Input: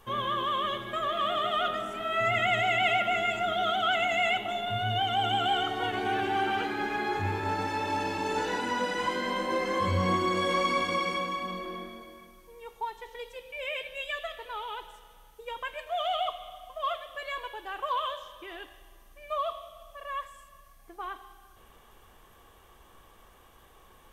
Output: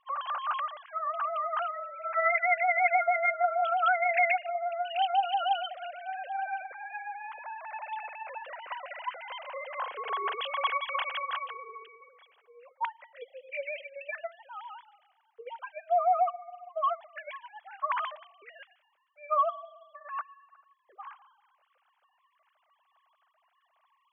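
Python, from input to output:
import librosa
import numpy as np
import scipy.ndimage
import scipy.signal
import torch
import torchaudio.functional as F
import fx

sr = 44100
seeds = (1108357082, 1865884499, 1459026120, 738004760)

y = fx.sine_speech(x, sr)
y = F.gain(torch.from_numpy(y), -1.5).numpy()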